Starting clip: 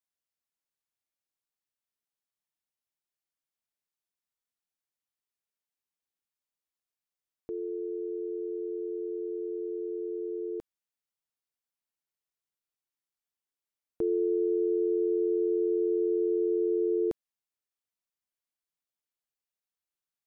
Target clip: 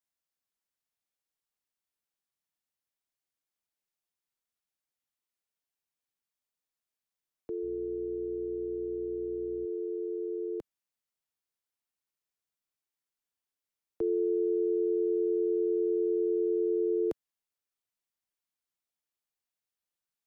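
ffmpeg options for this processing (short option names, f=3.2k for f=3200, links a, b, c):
-filter_complex "[0:a]acrossover=split=120|290[a][b][c];[b]alimiter=level_in=16.5dB:limit=-24dB:level=0:latency=1:release=24,volume=-16.5dB[d];[a][d][c]amix=inputs=3:normalize=0,asettb=1/sr,asplit=3[e][f][g];[e]atrim=end=7.634[h];[f]atrim=start=7.63:end=9.66,asetpts=PTS-STARTPTS,afade=t=in:d=0.004:c=qsin,afade=t=out:st=2.026:d=0.004:c=qsin,aeval=exprs='val(0)+0.00224*(sin(2*PI*60*n/s)+sin(2*PI*2*60*n/s)/2+sin(2*PI*3*60*n/s)/3+sin(2*PI*4*60*n/s)/4+sin(2*PI*5*60*n/s)/5)':c=same[i];[g]atrim=start=9.656[j];[h][i]acrossfade=d=0.004:c1=hsin:c2=qsin[k];[k][j]acrossfade=d=0.004:c1=qsin:c2=hsin"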